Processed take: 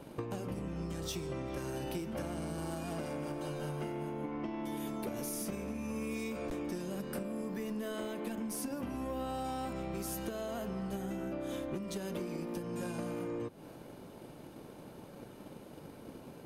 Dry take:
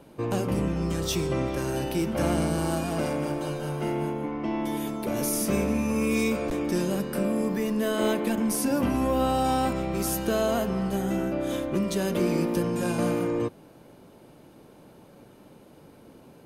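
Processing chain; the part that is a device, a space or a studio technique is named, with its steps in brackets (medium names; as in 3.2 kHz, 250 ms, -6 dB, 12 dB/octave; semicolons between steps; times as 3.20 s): drum-bus smash (transient shaper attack +8 dB, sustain +2 dB; compression 12:1, threshold -34 dBFS, peak gain reduction 18.5 dB; saturation -29 dBFS, distortion -20 dB)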